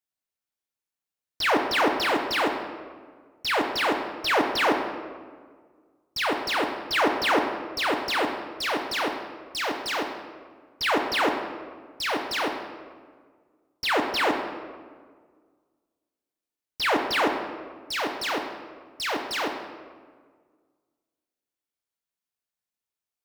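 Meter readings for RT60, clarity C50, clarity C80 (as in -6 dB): 1.7 s, 6.0 dB, 7.5 dB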